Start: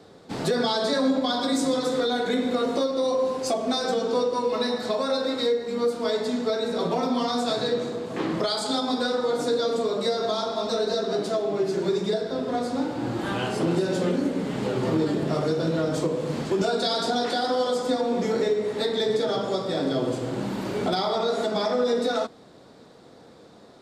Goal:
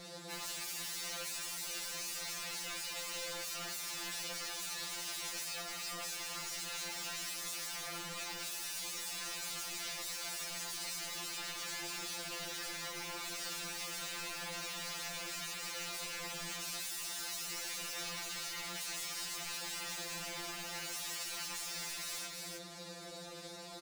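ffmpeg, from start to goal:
ffmpeg -i in.wav -af "aeval=exprs='val(0)+0.00126*(sin(2*PI*60*n/s)+sin(2*PI*2*60*n/s)/2+sin(2*PI*3*60*n/s)/3+sin(2*PI*4*60*n/s)/4+sin(2*PI*5*60*n/s)/5)':channel_layout=same,acrusher=bits=8:mix=0:aa=0.5,aeval=exprs='(mod(28.2*val(0)+1,2)-1)/28.2':channel_layout=same,acompressor=threshold=-41dB:ratio=6,equalizer=frequency=5800:width=0.31:gain=11.5,bandreject=frequency=3200:width=12,aecho=1:1:318:0.335,asoftclip=type=hard:threshold=-38dB,afftfilt=real='re*2.83*eq(mod(b,8),0)':imag='im*2.83*eq(mod(b,8),0)':win_size=2048:overlap=0.75" out.wav

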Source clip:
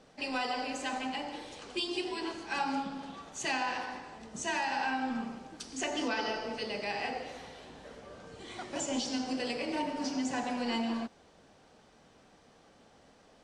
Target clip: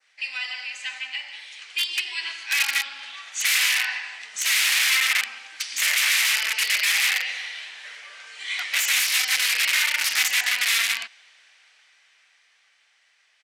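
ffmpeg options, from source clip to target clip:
ffmpeg -i in.wav -af "adynamicequalizer=threshold=0.00316:dfrequency=3300:dqfactor=1.1:tfrequency=3300:tqfactor=1.1:attack=5:release=100:ratio=0.375:range=2:mode=boostabove:tftype=bell,dynaudnorm=framelen=480:gausssize=11:maxgain=12.5dB,aeval=exprs='(mod(7.5*val(0)+1,2)-1)/7.5':channel_layout=same,aresample=32000,aresample=44100,highpass=frequency=2100:width_type=q:width=2.9" out.wav

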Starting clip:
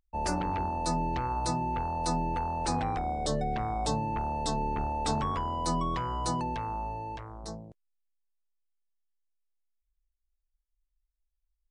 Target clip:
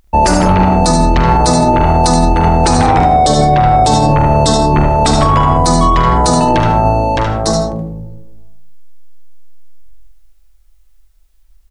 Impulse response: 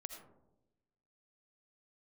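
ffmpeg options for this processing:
-filter_complex "[0:a]aecho=1:1:44|74:0.355|0.473[link_01];[1:a]atrim=start_sample=2205[link_02];[link_01][link_02]afir=irnorm=-1:irlink=0,alimiter=level_in=32.5dB:limit=-1dB:release=50:level=0:latency=1,volume=-1dB"

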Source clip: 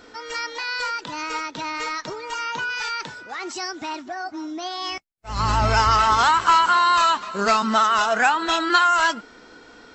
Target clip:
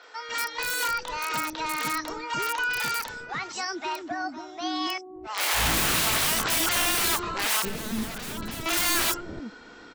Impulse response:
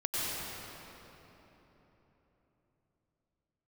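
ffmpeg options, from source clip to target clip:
-filter_complex "[0:a]aeval=exprs='(mod(8.41*val(0)+1,2)-1)/8.41':channel_layout=same,asettb=1/sr,asplit=3[link_01][link_02][link_03];[link_01]atrim=end=7.624[link_04];[link_02]atrim=start=7.62:end=8.66,asetpts=PTS-STARTPTS,afade=type=in:duration=0.004:curve=qsin,afade=type=out:start_time=1.036:duration=0.004:curve=qsin,acrossover=split=420[link_05][link_06];[link_06]acompressor=threshold=-41dB:ratio=2.5[link_07];[link_05][link_07]amix=inputs=2:normalize=0[link_08];[link_03]atrim=start=8.656[link_09];[link_04][link_08]acrossfade=duration=0.004:curve1=hsin:curve2=qsin[link_10];[link_10][link_09]acrossfade=duration=0.004:curve1=qsin:curve2=hsin,acrossover=split=490|5800[link_11][link_12][link_13];[link_13]adelay=30[link_14];[link_11]adelay=290[link_15];[link_15][link_12][link_14]amix=inputs=3:normalize=0"

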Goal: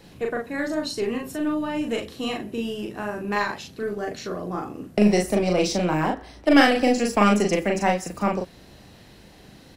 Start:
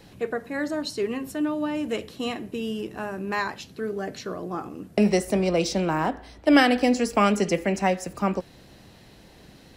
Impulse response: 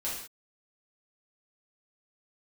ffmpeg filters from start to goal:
-filter_complex "[0:a]aeval=exprs='0.501*(cos(1*acos(clip(val(0)/0.501,-1,1)))-cos(1*PI/2))+0.02*(cos(6*acos(clip(val(0)/0.501,-1,1)))-cos(6*PI/2))+0.00282*(cos(8*acos(clip(val(0)/0.501,-1,1)))-cos(8*PI/2))':channel_layout=same,asplit=2[link_01][link_02];[link_02]adelay=39,volume=-2.5dB[link_03];[link_01][link_03]amix=inputs=2:normalize=0"

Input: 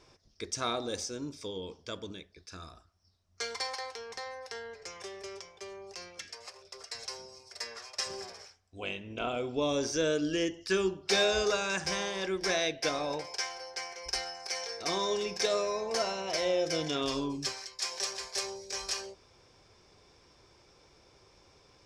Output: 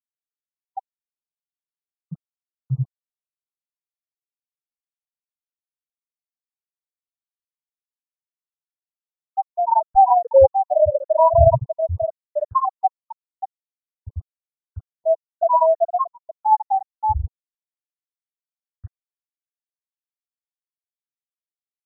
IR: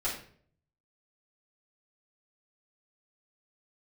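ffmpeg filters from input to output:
-filter_complex "[0:a]aecho=1:1:591|1182|1773:0.531|0.0956|0.0172,asetrate=70004,aresample=44100,atempo=0.629961,lowshelf=frequency=190:width_type=q:width=3:gain=13.5,acrossover=split=340|3500[link_01][link_02][link_03];[link_01]acrusher=samples=41:mix=1:aa=0.000001[link_04];[link_04][link_02][link_03]amix=inputs=3:normalize=0,bandreject=frequency=50:width_type=h:width=6,bandreject=frequency=100:width_type=h:width=6,bandreject=frequency=150:width_type=h:width=6,bandreject=frequency=200:width_type=h:width=6,bandreject=frequency=250:width_type=h:width=6,bandreject=frequency=300:width_type=h:width=6,bandreject=frequency=350:width_type=h:width=6,bandreject=frequency=400:width_type=h:width=6[link_05];[1:a]atrim=start_sample=2205,afade=type=out:start_time=0.39:duration=0.01,atrim=end_sample=17640[link_06];[link_05][link_06]afir=irnorm=-1:irlink=0,afftfilt=real='re*gte(hypot(re,im),0.447)':imag='im*gte(hypot(re,im),0.447)':win_size=1024:overlap=0.75,equalizer=frequency=125:width_type=o:width=1:gain=7,equalizer=frequency=250:width_type=o:width=1:gain=-5,equalizer=frequency=500:width_type=o:width=1:gain=10,equalizer=frequency=1000:width_type=o:width=1:gain=7,equalizer=frequency=2000:width_type=o:width=1:gain=-6,equalizer=frequency=4000:width_type=o:width=1:gain=-5,acrusher=bits=9:mix=0:aa=0.000001,afftfilt=real='re*lt(b*sr/1024,960*pow(2000/960,0.5+0.5*sin(2*PI*0.91*pts/sr)))':imag='im*lt(b*sr/1024,960*pow(2000/960,0.5+0.5*sin(2*PI*0.91*pts/sr)))':win_size=1024:overlap=0.75,volume=4dB"

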